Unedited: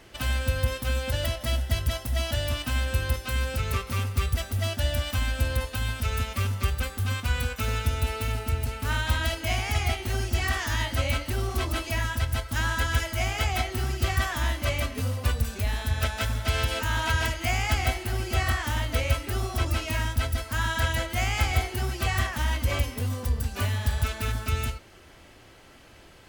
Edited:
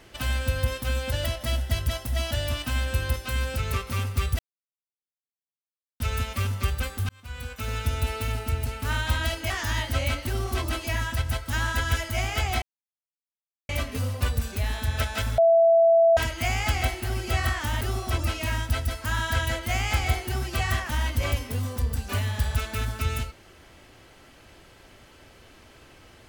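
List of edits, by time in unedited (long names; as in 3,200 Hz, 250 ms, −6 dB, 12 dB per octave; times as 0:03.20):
0:04.39–0:06.00: silence
0:07.09–0:07.94: fade in
0:09.50–0:10.53: remove
0:13.65–0:14.72: silence
0:16.41–0:17.20: beep over 665 Hz −14 dBFS
0:18.84–0:19.28: remove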